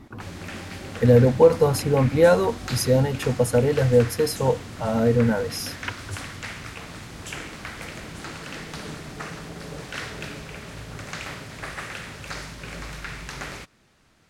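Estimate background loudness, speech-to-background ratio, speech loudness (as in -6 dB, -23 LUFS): -36.0 LUFS, 15.5 dB, -20.5 LUFS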